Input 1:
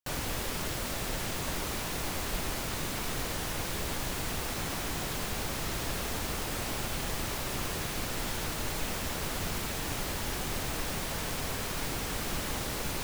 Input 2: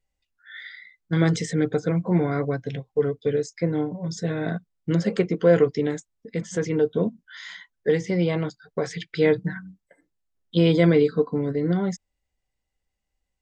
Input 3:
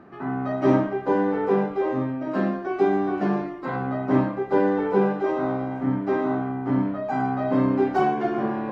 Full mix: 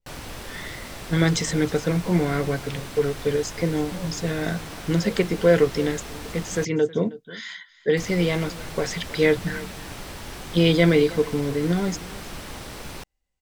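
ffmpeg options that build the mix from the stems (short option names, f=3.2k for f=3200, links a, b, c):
-filter_complex "[0:a]highshelf=f=12k:g=-10,bandreject=f=6.8k:w=20,volume=-2dB,asplit=3[a][b][c];[a]atrim=end=6.65,asetpts=PTS-STARTPTS,afade=t=out:st=6.646:d=0.004:c=hsin[d];[b]atrim=start=6.65:end=7.97,asetpts=PTS-STARTPTS,volume=0[e];[c]atrim=start=7.97,asetpts=PTS-STARTPTS,afade=t=in:d=0.004:c=hsin[f];[d][e][f]concat=n=3:v=0:a=1[g];[1:a]adynamicequalizer=threshold=0.0112:dfrequency=1600:dqfactor=0.7:tfrequency=1600:tqfactor=0.7:attack=5:release=100:ratio=0.375:range=3.5:mode=boostabove:tftype=highshelf,volume=0dB,asplit=2[h][i];[i]volume=-19dB,aecho=0:1:317:1[j];[g][h][j]amix=inputs=3:normalize=0"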